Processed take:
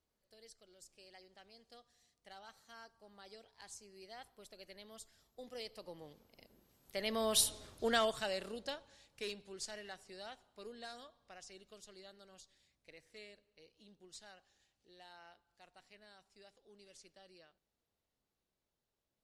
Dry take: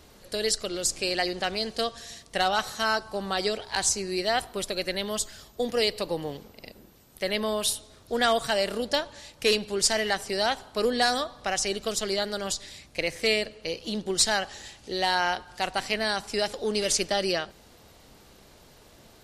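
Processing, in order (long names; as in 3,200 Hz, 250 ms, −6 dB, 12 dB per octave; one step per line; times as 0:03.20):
source passing by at 0:07.55, 13 m/s, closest 2.4 metres
level −1 dB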